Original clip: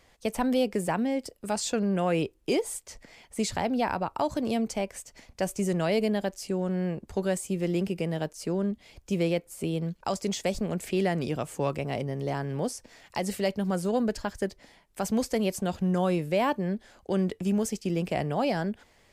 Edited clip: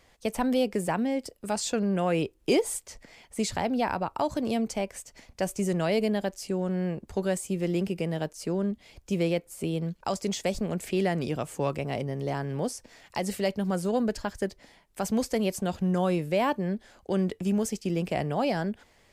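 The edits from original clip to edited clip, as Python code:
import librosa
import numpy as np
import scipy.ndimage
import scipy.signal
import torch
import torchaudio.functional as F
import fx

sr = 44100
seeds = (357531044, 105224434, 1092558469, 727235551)

y = fx.edit(x, sr, fx.clip_gain(start_s=2.4, length_s=0.47, db=3.0), tone=tone)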